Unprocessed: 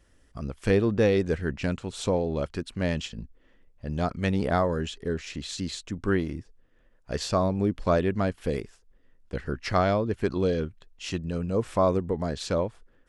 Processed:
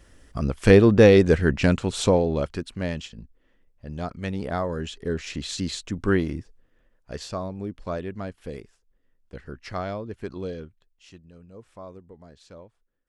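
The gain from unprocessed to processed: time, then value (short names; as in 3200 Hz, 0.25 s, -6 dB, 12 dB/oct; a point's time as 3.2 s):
1.9 s +8.5 dB
3.13 s -4 dB
4.5 s -4 dB
5.28 s +3.5 dB
6.37 s +3.5 dB
7.45 s -7.5 dB
10.49 s -7.5 dB
11.28 s -19 dB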